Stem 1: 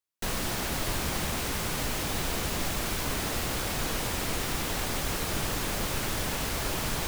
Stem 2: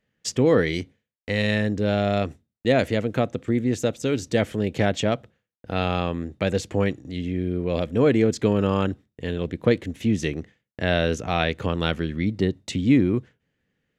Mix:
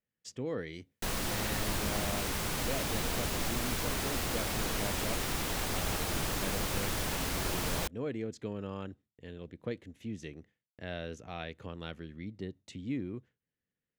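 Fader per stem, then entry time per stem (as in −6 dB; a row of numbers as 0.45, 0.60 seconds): −3.0, −18.0 decibels; 0.80, 0.00 seconds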